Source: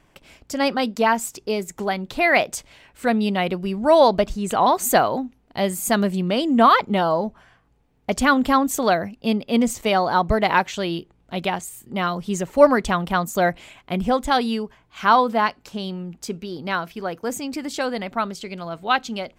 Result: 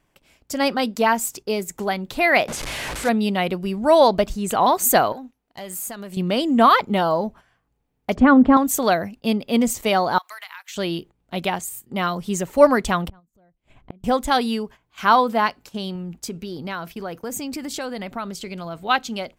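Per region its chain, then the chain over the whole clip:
2.48–3.09 delta modulation 64 kbps, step -22 dBFS + high shelf 5900 Hz -10 dB + notches 50/100/150/200/250/300/350/400 Hz
5.12–6.17 low shelf 370 Hz -8 dB + compressor 5:1, threshold -30 dBFS + tube stage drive 21 dB, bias 0.35
8.15–8.57 LPF 1600 Hz + bell 210 Hz +8 dB 2.7 oct
10.18–10.76 HPF 1200 Hz 24 dB/oct + high shelf 10000 Hz +10 dB + compressor 20:1, threshold -33 dBFS
13.08–14.04 tilt -4 dB/oct + flipped gate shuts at -22 dBFS, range -35 dB
15.95–18.89 low shelf 150 Hz +5 dB + compressor 2.5:1, threshold -27 dBFS
whole clip: gate -40 dBFS, range -9 dB; high shelf 10000 Hz +9.5 dB

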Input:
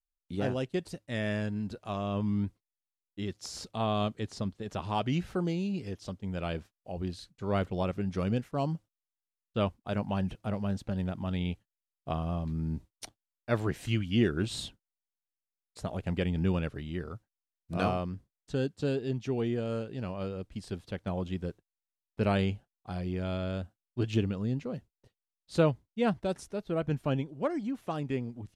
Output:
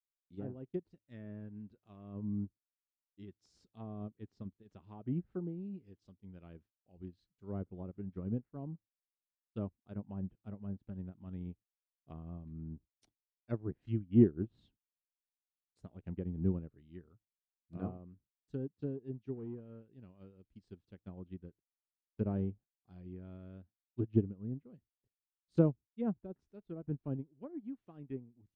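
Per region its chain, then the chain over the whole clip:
19.34–20.03 air absorption 140 m + hard clip -27 dBFS
whole clip: treble ducked by the level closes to 850 Hz, closed at -26.5 dBFS; resonant low shelf 450 Hz +6 dB, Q 1.5; upward expander 2.5:1, over -32 dBFS; gain -3.5 dB

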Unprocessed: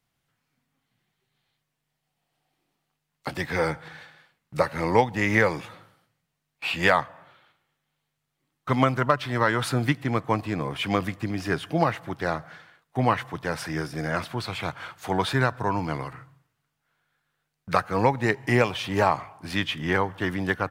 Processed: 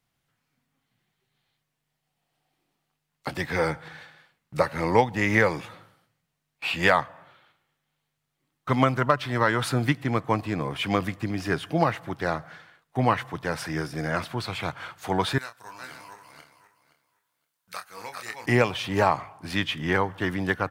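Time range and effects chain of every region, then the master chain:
15.38–18.46 regenerating reverse delay 0.259 s, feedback 41%, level -2.5 dB + pre-emphasis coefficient 0.97 + doubler 27 ms -7 dB
whole clip: dry

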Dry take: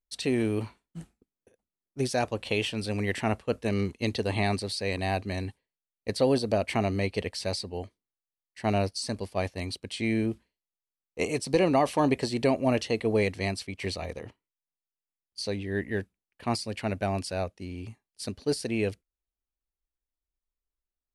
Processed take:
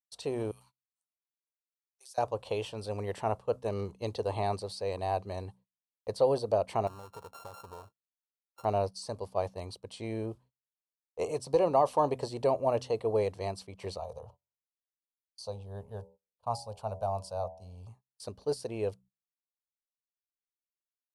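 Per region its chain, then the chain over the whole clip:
0.51–2.18 HPF 890 Hz + differentiator + compressor 2:1, threshold -42 dBFS
6.87–8.65 sample sorter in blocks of 32 samples + compressor 12:1, threshold -37 dBFS
13.99–17.89 low shelf 76 Hz +4.5 dB + fixed phaser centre 810 Hz, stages 4 + de-hum 82.06 Hz, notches 12
whole clip: de-hum 63.37 Hz, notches 4; gate -50 dBFS, range -23 dB; ten-band EQ 125 Hz +4 dB, 250 Hz -8 dB, 500 Hz +8 dB, 1000 Hz +11 dB, 2000 Hz -11 dB; gain -8.5 dB

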